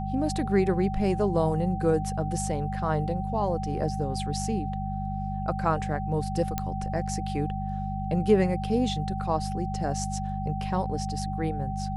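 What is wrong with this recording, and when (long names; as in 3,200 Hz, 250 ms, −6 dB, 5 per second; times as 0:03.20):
mains hum 50 Hz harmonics 4 −32 dBFS
whistle 770 Hz −34 dBFS
0:06.58: click −13 dBFS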